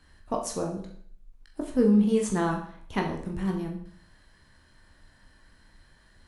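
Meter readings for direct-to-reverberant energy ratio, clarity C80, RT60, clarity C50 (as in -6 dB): 0.5 dB, 10.5 dB, 0.55 s, 7.5 dB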